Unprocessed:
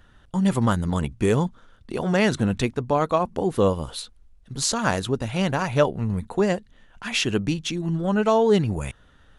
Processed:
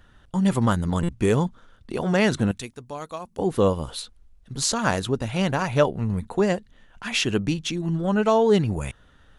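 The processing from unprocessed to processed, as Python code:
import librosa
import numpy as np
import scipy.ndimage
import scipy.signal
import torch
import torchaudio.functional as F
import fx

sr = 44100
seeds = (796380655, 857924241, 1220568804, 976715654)

y = fx.pre_emphasis(x, sr, coefficient=0.8, at=(2.51, 3.39))
y = fx.buffer_glitch(y, sr, at_s=(1.03,), block=256, repeats=9)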